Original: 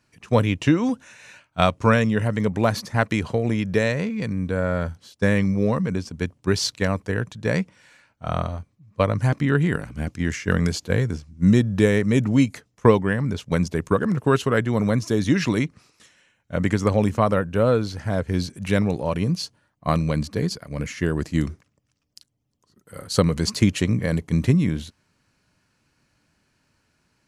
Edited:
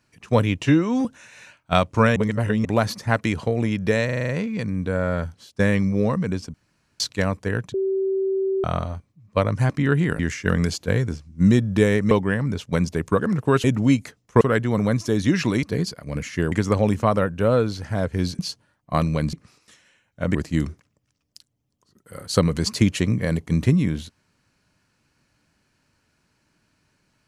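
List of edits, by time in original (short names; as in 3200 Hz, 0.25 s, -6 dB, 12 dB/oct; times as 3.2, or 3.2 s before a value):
0.66–0.92 stretch 1.5×
2.03–2.52 reverse
3.92 stutter 0.04 s, 7 plays
6.17–6.63 room tone
7.37–8.27 bleep 385 Hz -19.5 dBFS
9.82–10.21 cut
12.13–12.9 move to 14.43
15.65–16.67 swap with 20.27–21.16
18.54–19.33 cut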